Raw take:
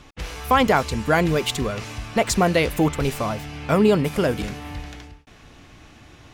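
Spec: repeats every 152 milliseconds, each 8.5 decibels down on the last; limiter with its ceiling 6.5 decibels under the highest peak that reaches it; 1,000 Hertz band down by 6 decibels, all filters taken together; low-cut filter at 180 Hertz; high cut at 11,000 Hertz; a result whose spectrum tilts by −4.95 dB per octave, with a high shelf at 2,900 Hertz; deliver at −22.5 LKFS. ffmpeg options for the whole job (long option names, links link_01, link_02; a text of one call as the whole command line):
ffmpeg -i in.wav -af "highpass=180,lowpass=11000,equalizer=frequency=1000:width_type=o:gain=-7.5,highshelf=frequency=2900:gain=-7.5,alimiter=limit=-14.5dB:level=0:latency=1,aecho=1:1:152|304|456|608:0.376|0.143|0.0543|0.0206,volume=3.5dB" out.wav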